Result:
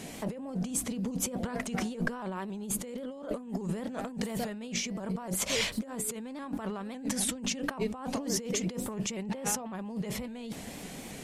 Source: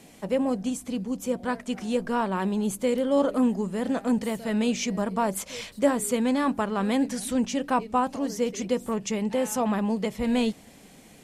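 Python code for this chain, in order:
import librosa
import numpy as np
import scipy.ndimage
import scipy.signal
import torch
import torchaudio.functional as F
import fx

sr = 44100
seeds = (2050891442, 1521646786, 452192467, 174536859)

y = fx.high_shelf(x, sr, hz=5200.0, db=-6.0, at=(9.23, 9.75))
y = fx.over_compress(y, sr, threshold_db=-36.0, ratio=-1.0)
y = fx.vibrato_shape(y, sr, shape='saw_up', rate_hz=3.6, depth_cents=100.0)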